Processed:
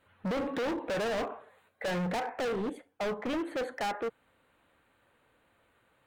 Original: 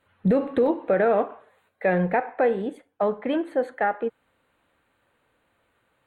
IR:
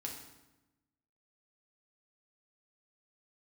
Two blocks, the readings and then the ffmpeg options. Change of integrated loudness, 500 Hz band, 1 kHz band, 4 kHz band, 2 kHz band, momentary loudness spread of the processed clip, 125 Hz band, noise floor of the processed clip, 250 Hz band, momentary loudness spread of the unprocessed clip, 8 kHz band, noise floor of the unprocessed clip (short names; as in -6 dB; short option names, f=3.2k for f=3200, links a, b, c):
-9.5 dB, -10.5 dB, -8.5 dB, +5.5 dB, -7.0 dB, 7 LU, -9.5 dB, -70 dBFS, -9.0 dB, 9 LU, n/a, -70 dBFS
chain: -af "asoftclip=type=hard:threshold=-30dB"